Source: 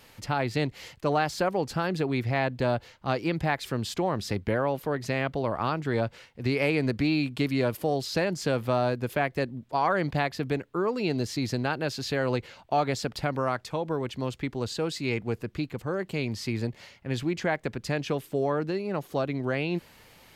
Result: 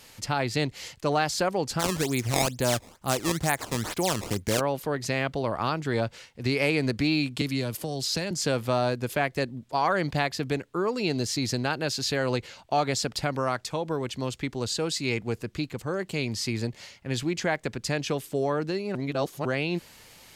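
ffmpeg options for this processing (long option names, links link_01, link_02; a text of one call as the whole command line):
ffmpeg -i in.wav -filter_complex "[0:a]asplit=3[link_01][link_02][link_03];[link_01]afade=type=out:start_time=1.79:duration=0.02[link_04];[link_02]acrusher=samples=17:mix=1:aa=0.000001:lfo=1:lforange=27.2:lforate=2.2,afade=type=in:start_time=1.79:duration=0.02,afade=type=out:start_time=4.59:duration=0.02[link_05];[link_03]afade=type=in:start_time=4.59:duration=0.02[link_06];[link_04][link_05][link_06]amix=inputs=3:normalize=0,asettb=1/sr,asplit=3[link_07][link_08][link_09];[link_07]atrim=end=7.414[link_10];[link_08]atrim=start=7.41:end=8.31,asetpts=PTS-STARTPTS,afade=type=in:duration=0.004:curve=qsin,afade=type=out:start_time=0.896:duration=0.004:curve=qsin,acrossover=split=240|3000[link_11][link_12][link_13];[link_12]acompressor=threshold=-31dB:ratio=6:attack=3.2:release=140:knee=2.83:detection=peak[link_14];[link_11][link_14][link_13]amix=inputs=3:normalize=0[link_15];[link_09]atrim=start=8.306[link_16];[link_10][link_15]acrossfade=duration=0.004:curve1=hsin:curve2=qsin[link_17];[link_17][link_16]acrossfade=duration=0.004:curve1=qsin:curve2=hsin,asplit=3[link_18][link_19][link_20];[link_18]atrim=end=18.952[link_21];[link_19]atrim=start=18.948:end=19.452,asetpts=PTS-STARTPTS,areverse[link_22];[link_20]atrim=start=19.448[link_23];[link_21][link_22]acrossfade=duration=0.004:curve1=hsin:curve2=hsin[link_24];[link_24][link_23]acrossfade=duration=0.004:curve1=hsin:curve2=hsin,equalizer=frequency=7400:width=0.58:gain=9" out.wav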